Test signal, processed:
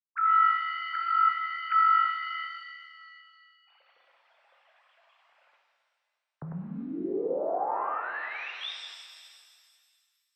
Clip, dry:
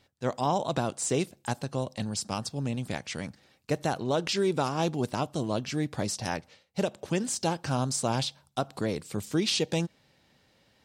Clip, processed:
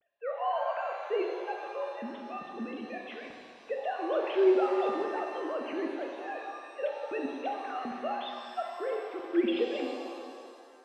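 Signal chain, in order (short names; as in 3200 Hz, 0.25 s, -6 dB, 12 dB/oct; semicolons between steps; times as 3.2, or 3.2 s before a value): sine-wave speech; shimmer reverb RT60 2.1 s, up +7 st, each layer -8 dB, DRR 1 dB; gain -5 dB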